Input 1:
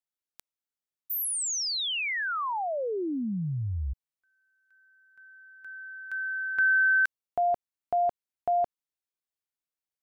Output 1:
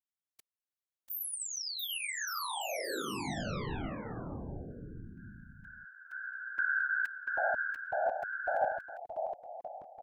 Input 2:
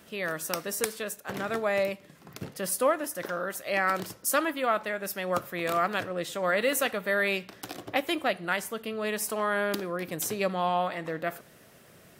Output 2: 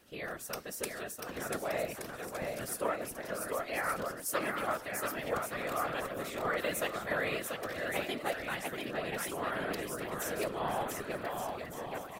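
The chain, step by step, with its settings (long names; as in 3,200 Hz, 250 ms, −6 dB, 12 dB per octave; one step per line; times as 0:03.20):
bouncing-ball delay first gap 690 ms, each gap 0.7×, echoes 5
random phases in short frames
level −8.5 dB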